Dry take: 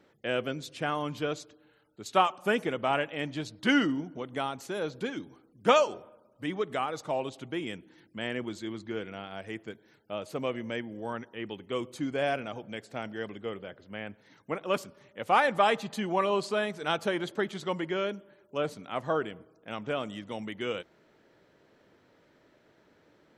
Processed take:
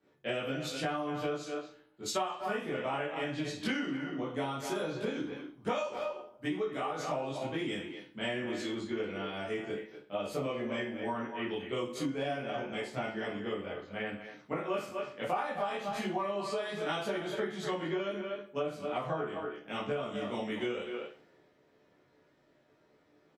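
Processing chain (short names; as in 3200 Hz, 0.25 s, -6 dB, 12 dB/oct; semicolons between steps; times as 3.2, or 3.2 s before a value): speakerphone echo 0.24 s, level -9 dB; reverb RT60 0.40 s, pre-delay 14 ms, DRR -8 dB; compressor 20:1, threshold -26 dBFS, peak gain reduction 19 dB; three-band expander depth 40%; gain -4.5 dB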